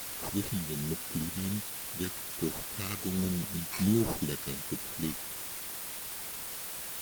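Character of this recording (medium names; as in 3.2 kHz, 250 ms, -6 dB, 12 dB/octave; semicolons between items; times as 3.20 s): aliases and images of a low sample rate 3.3 kHz; phasing stages 2, 1.3 Hz, lowest notch 550–2500 Hz; a quantiser's noise floor 6-bit, dither triangular; Opus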